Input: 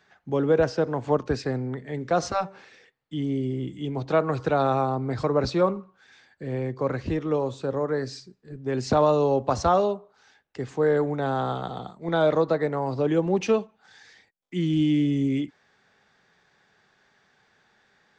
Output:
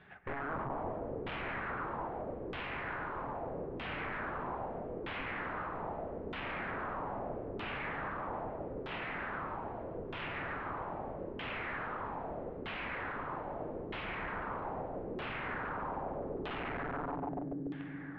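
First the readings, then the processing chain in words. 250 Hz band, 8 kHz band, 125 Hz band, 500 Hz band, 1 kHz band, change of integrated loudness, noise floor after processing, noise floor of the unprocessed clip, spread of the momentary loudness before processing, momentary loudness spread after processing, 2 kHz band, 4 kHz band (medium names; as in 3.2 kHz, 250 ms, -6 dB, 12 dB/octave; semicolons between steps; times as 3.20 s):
-16.0 dB, no reading, -16.5 dB, -17.0 dB, -9.0 dB, -14.5 dB, -44 dBFS, -65 dBFS, 13 LU, 3 LU, -1.5 dB, -9.5 dB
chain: median filter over 9 samples; tone controls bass +6 dB, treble +8 dB; compression 6:1, threshold -33 dBFS, peak gain reduction 17 dB; peak limiter -33.5 dBFS, peak gain reduction 11 dB; echo with a slow build-up 143 ms, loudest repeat 5, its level -3.5 dB; integer overflow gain 37.5 dB; distance through air 480 m; LFO low-pass saw down 0.79 Hz 390–3300 Hz; trim +4.5 dB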